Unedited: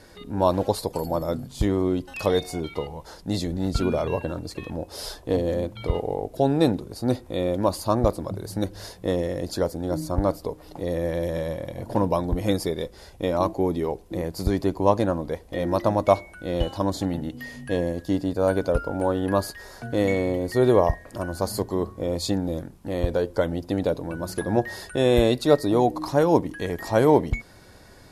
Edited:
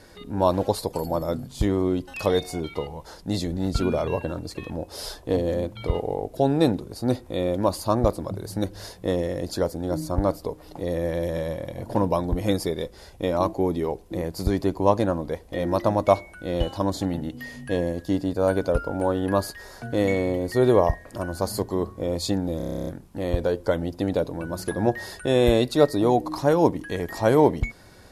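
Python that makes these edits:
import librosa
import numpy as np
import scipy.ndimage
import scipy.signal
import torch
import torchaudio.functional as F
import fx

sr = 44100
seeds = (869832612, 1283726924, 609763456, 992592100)

y = fx.edit(x, sr, fx.stutter(start_s=22.57, slice_s=0.03, count=11), tone=tone)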